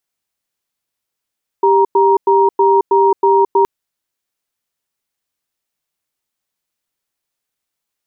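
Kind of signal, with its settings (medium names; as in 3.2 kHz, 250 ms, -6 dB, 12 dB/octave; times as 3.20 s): cadence 394 Hz, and 941 Hz, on 0.22 s, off 0.10 s, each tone -10.5 dBFS 2.02 s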